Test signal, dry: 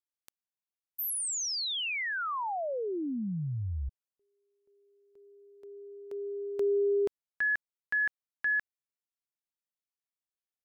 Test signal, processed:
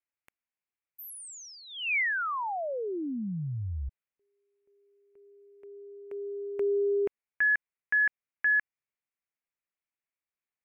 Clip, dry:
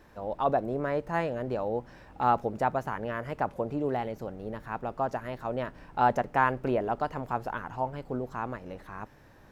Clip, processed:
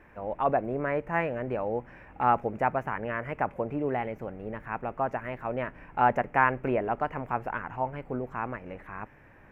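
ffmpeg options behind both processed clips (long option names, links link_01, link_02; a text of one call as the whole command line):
ffmpeg -i in.wav -af "highshelf=frequency=3100:width_type=q:width=3:gain=-10" out.wav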